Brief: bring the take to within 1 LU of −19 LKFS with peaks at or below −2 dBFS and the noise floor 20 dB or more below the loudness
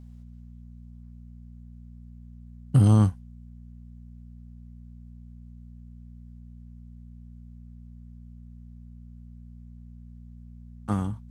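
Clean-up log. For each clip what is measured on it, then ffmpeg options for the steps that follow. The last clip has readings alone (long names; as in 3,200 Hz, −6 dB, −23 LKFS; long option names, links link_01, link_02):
mains hum 60 Hz; hum harmonics up to 240 Hz; level of the hum −43 dBFS; integrated loudness −23.0 LKFS; sample peak −8.0 dBFS; target loudness −19.0 LKFS
→ -af "bandreject=frequency=60:width_type=h:width=4,bandreject=frequency=120:width_type=h:width=4,bandreject=frequency=180:width_type=h:width=4,bandreject=frequency=240:width_type=h:width=4"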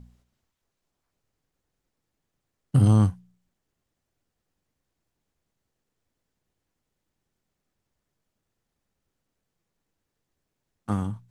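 mains hum none found; integrated loudness −23.0 LKFS; sample peak −8.0 dBFS; target loudness −19.0 LKFS
→ -af "volume=4dB"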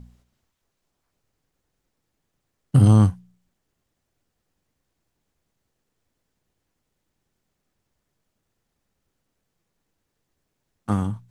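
integrated loudness −19.0 LKFS; sample peak −4.0 dBFS; background noise floor −78 dBFS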